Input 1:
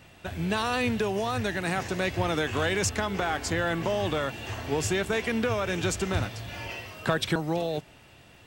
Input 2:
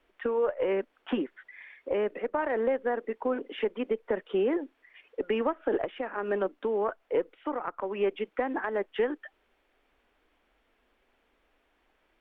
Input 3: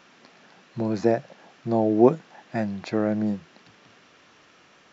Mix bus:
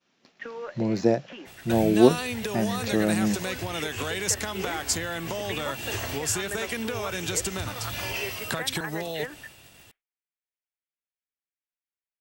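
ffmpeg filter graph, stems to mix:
-filter_complex "[0:a]agate=range=-33dB:threshold=-50dB:ratio=3:detection=peak,acompressor=threshold=-32dB:ratio=6,adelay=1450,volume=2.5dB[a];[1:a]equalizer=f=2.1k:t=o:w=1.8:g=13,adelay=200,volume=-12.5dB[b];[2:a]equalizer=f=1.4k:t=o:w=2.2:g=-6.5,adynamicsmooth=sensitivity=4:basefreq=4.8k,volume=1dB,asplit=2[c][d];[d]apad=whole_len=547180[e];[b][e]sidechaincompress=threshold=-32dB:ratio=8:attack=16:release=282[f];[a][f][c]amix=inputs=3:normalize=0,crystalizer=i=3:c=0,agate=range=-33dB:threshold=-46dB:ratio=3:detection=peak"

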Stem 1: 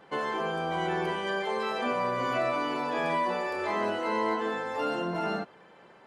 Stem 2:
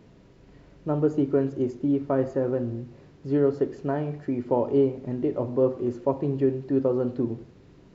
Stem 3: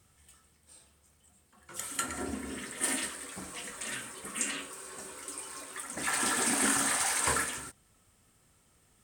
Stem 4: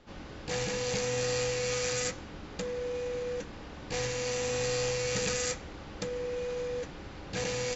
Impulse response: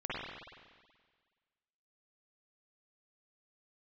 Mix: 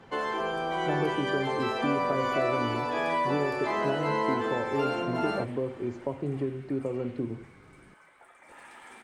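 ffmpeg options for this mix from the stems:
-filter_complex "[0:a]highpass=200,volume=0.5dB[a];[1:a]acrossover=split=130|3000[b][c][d];[c]acompressor=threshold=-25dB:ratio=6[e];[b][e][d]amix=inputs=3:normalize=0,volume=-3dB[f];[2:a]highpass=f=210:w=0.5412,highpass=f=210:w=1.3066,equalizer=f=2.4k:t=o:w=1.8:g=5,alimiter=limit=-17.5dB:level=0:latency=1:release=389,adelay=2450,volume=-12.5dB,asplit=2[g][h];[h]volume=-13.5dB[i];[g]lowpass=f=2.2k:t=q:w=0.5098,lowpass=f=2.2k:t=q:w=0.6013,lowpass=f=2.2k:t=q:w=0.9,lowpass=f=2.2k:t=q:w=2.563,afreqshift=-2600,alimiter=level_in=19.5dB:limit=-24dB:level=0:latency=1:release=150,volume=-19.5dB,volume=0dB[j];[4:a]atrim=start_sample=2205[k];[i][k]afir=irnorm=-1:irlink=0[l];[a][f][j][l]amix=inputs=4:normalize=0"

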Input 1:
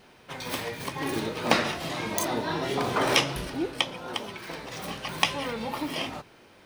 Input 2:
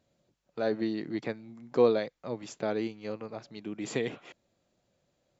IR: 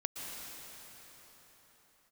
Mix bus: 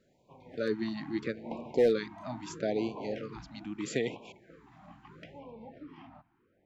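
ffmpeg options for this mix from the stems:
-filter_complex "[0:a]lowpass=1.2k,asoftclip=type=tanh:threshold=-13.5dB,volume=-14dB[a];[1:a]equalizer=f=73:t=o:w=0.5:g=-9,volume=18.5dB,asoftclip=hard,volume=-18.5dB,volume=0dB[b];[a][b]amix=inputs=2:normalize=0,afftfilt=real='re*(1-between(b*sr/1024,420*pow(1600/420,0.5+0.5*sin(2*PI*0.77*pts/sr))/1.41,420*pow(1600/420,0.5+0.5*sin(2*PI*0.77*pts/sr))*1.41))':imag='im*(1-between(b*sr/1024,420*pow(1600/420,0.5+0.5*sin(2*PI*0.77*pts/sr))/1.41,420*pow(1600/420,0.5+0.5*sin(2*PI*0.77*pts/sr))*1.41))':win_size=1024:overlap=0.75"

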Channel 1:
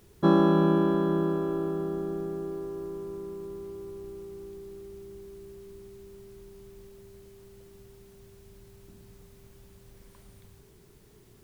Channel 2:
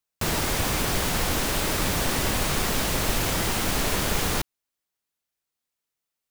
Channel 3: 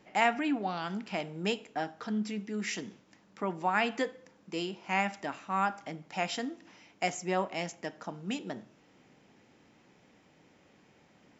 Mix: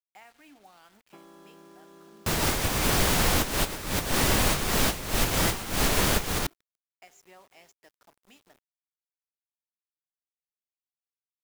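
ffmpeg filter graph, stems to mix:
-filter_complex "[0:a]adelay=900,volume=-17.5dB[a];[1:a]adelay=2050,volume=2dB[b];[2:a]volume=-17dB,asplit=2[c][d];[d]apad=whole_len=368612[e];[b][e]sidechaincompress=threshold=-52dB:ratio=16:attack=9:release=159[f];[a][c]amix=inputs=2:normalize=0,highpass=f=620:p=1,acompressor=threshold=-48dB:ratio=10,volume=0dB[g];[f][g]amix=inputs=2:normalize=0,acrusher=bits=9:mix=0:aa=0.000001"

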